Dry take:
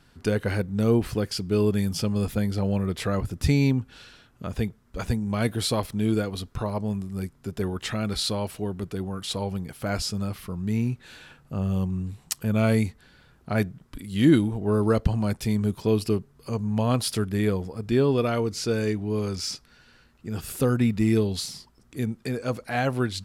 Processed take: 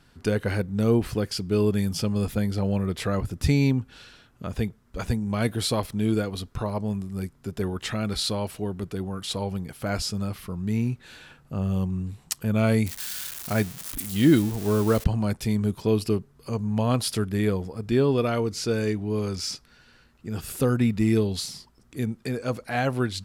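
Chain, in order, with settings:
0:12.86–0:15.04: spike at every zero crossing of −23 dBFS

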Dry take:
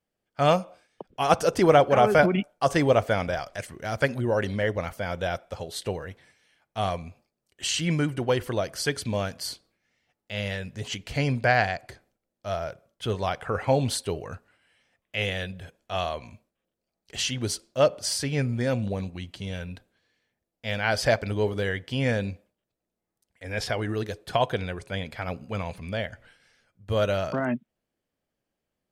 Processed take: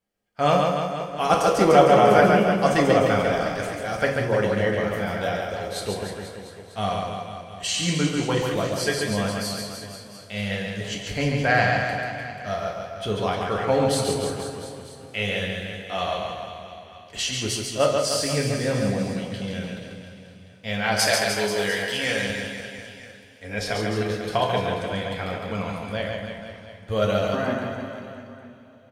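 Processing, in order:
0:20.99–0:22.30: spectral tilt +3.5 dB per octave
reverse bouncing-ball delay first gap 140 ms, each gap 1.15×, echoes 5
coupled-rooms reverb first 0.38 s, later 4.3 s, from −20 dB, DRR 1 dB
level −1 dB

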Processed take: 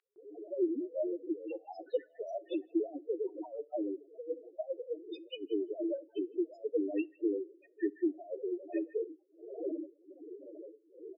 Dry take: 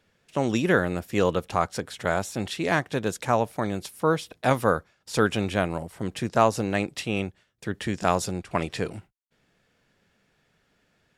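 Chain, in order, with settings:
wind on the microphone 470 Hz −40 dBFS
elliptic high-pass filter 300 Hz, stop band 40 dB
high-shelf EQ 3,900 Hz −8 dB
compressor whose output falls as the input rises −29 dBFS, ratio −0.5
transient designer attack +6 dB, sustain −2 dB
notch comb filter 1,100 Hz
spectral peaks only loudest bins 2
high-frequency loss of the air 230 metres
multiband delay without the direct sound highs, lows 160 ms, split 1,400 Hz
on a send at −23 dB: convolution reverb RT60 0.40 s, pre-delay 3 ms

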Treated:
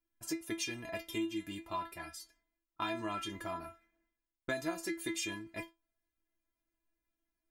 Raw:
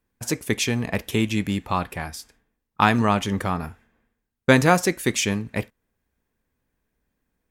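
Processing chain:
stiff-string resonator 330 Hz, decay 0.22 s, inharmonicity 0.002
downward compressor 6 to 1, threshold −35 dBFS, peak gain reduction 10.5 dB
level +2 dB

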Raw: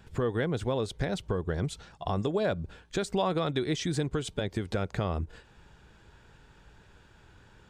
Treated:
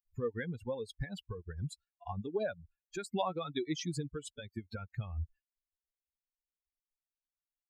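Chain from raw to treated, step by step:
spectral dynamics exaggerated over time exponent 3
level −1 dB

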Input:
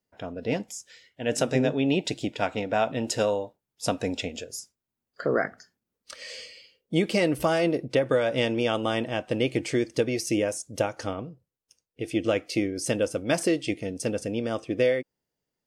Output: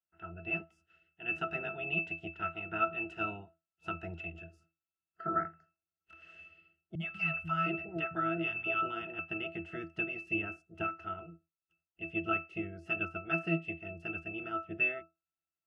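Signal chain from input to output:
ceiling on every frequency bin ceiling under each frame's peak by 17 dB
flat-topped bell 1,800 Hz +10.5 dB
resonances in every octave E, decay 0.21 s
0:06.95–0:09.19: three-band delay without the direct sound lows, highs, mids 50/710 ms, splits 190/750 Hz

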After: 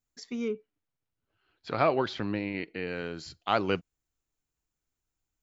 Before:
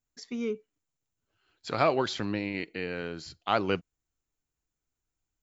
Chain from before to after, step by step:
0:00.48–0:02.87: Gaussian smoothing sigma 1.8 samples

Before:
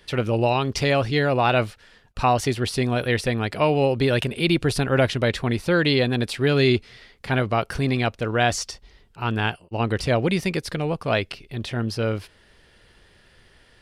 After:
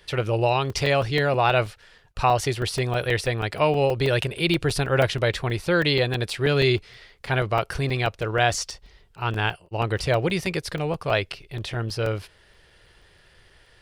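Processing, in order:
parametric band 240 Hz −12.5 dB 0.45 octaves
regular buffer underruns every 0.16 s, samples 128, zero, from 0:00.70

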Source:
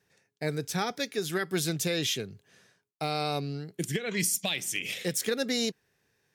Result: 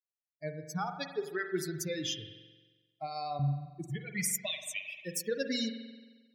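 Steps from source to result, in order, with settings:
spectral dynamics exaggerated over time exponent 3
0:03.39–0:03.79: low shelf with overshoot 240 Hz +13 dB, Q 1.5
spring reverb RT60 1.3 s, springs 44 ms, chirp 35 ms, DRR 7 dB

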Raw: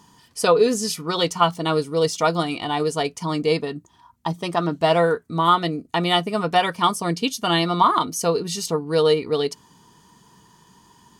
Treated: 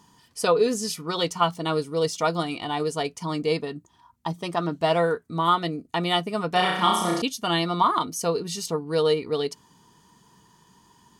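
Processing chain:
0:06.51–0:07.22: flutter between parallel walls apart 5.6 metres, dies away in 0.83 s
level −4 dB

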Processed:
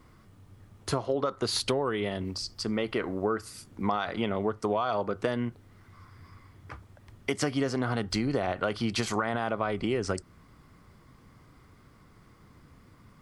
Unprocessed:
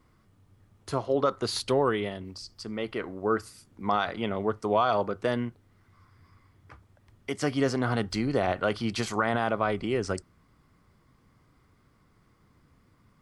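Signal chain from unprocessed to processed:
downward compressor, threshold −32 dBFS, peak gain reduction 12.5 dB
level +7 dB

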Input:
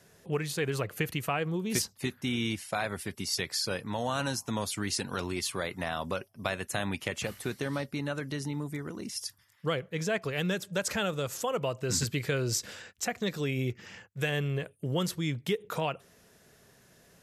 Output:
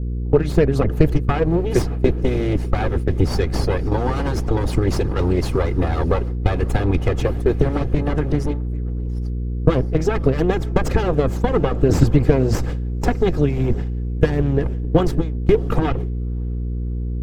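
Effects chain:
lower of the sound and its delayed copy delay 2.4 ms
low-pass filter 2,300 Hz 6 dB per octave
on a send: feedback delay with all-pass diffusion 586 ms, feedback 56%, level −16 dB
on the sum: noise gate with hold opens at −29 dBFS
in parallel at −1.5 dB: downward compressor, threshold −43 dBFS, peak gain reduction 17 dB
on the sum: harmonic and percussive parts rebalanced percussive +9 dB
hum with harmonics 60 Hz, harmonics 8, −39 dBFS −7 dB per octave
tilt shelving filter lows +9.5 dB, about 670 Hz
boost into a limiter +7.5 dB
level −1 dB

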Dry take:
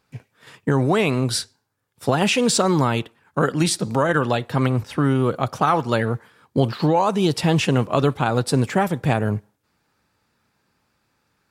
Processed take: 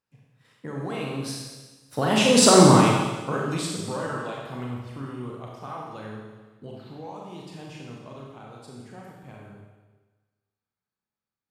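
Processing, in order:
source passing by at 0:02.55, 17 m/s, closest 3.4 metres
four-comb reverb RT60 1.3 s, combs from 29 ms, DRR −2.5 dB
level +2 dB

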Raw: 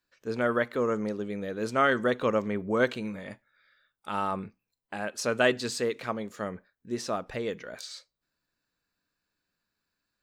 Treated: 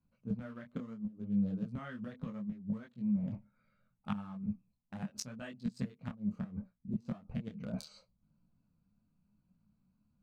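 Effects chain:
adaptive Wiener filter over 25 samples
gate with flip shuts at −23 dBFS, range −26 dB
low shelf with overshoot 270 Hz +10.5 dB, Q 3
reversed playback
downward compressor 8 to 1, threshold −37 dBFS, peak gain reduction 18.5 dB
reversed playback
micro pitch shift up and down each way 25 cents
level +7.5 dB

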